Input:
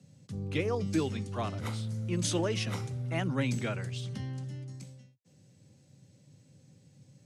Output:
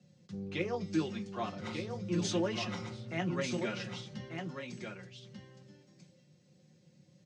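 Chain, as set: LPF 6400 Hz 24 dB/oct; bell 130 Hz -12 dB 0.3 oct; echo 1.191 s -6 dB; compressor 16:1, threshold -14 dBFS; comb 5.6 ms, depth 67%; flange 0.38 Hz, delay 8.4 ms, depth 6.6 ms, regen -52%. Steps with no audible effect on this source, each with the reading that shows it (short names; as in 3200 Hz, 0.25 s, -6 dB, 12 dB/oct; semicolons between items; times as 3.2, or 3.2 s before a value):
compressor, threshold -14 dBFS: input peak -17.0 dBFS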